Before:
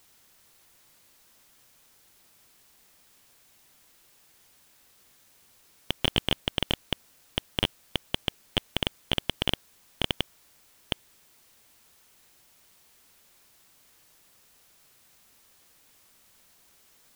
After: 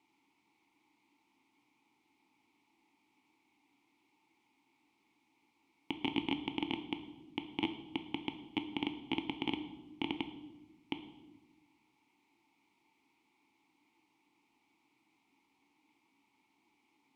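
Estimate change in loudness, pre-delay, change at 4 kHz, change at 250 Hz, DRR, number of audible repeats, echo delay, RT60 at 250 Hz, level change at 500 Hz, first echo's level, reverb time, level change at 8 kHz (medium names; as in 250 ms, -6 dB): -9.0 dB, 4 ms, -14.0 dB, 0.0 dB, 7.5 dB, no echo, no echo, 1.5 s, -9.0 dB, no echo, 1.0 s, under -25 dB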